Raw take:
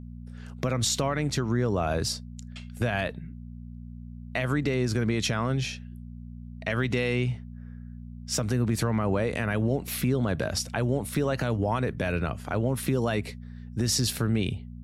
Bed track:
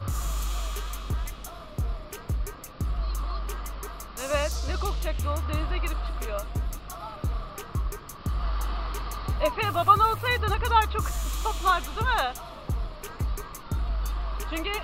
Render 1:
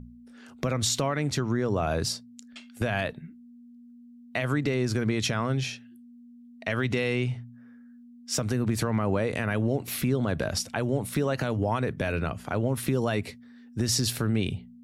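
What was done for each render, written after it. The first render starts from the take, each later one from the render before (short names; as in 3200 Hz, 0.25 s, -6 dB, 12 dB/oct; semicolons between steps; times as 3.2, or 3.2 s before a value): de-hum 60 Hz, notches 3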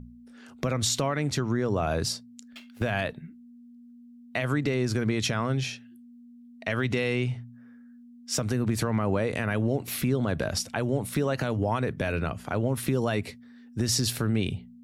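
2.44–2.91 median filter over 5 samples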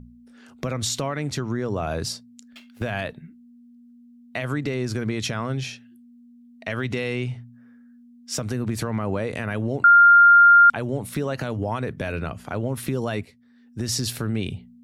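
9.84–10.7 bleep 1400 Hz -8.5 dBFS; 13.25–13.93 fade in, from -13.5 dB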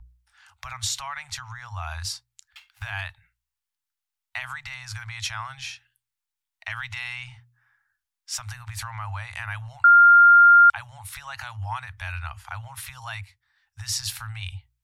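Chebyshev band-stop 100–830 Hz, order 4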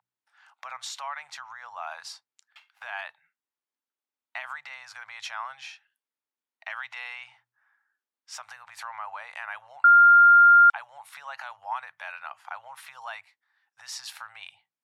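steep high-pass 230 Hz 48 dB/oct; tilt -4 dB/oct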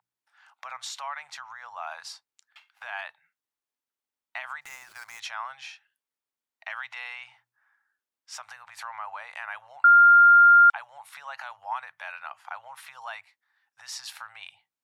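4.61–5.2 switching dead time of 0.093 ms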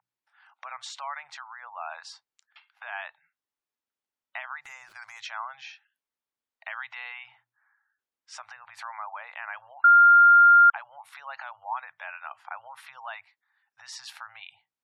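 spectral gate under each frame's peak -25 dB strong; high shelf 6000 Hz -8.5 dB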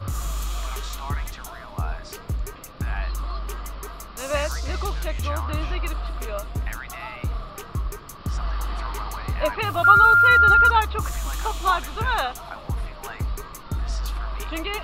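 add bed track +1.5 dB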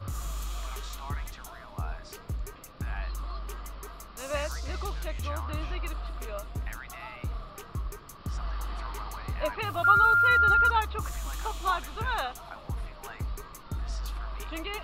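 gain -7 dB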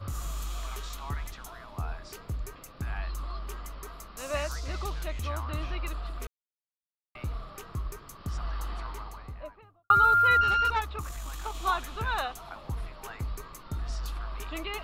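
6.27–7.15 mute; 8.61–9.9 studio fade out; 10.41–11.55 tube stage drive 19 dB, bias 0.6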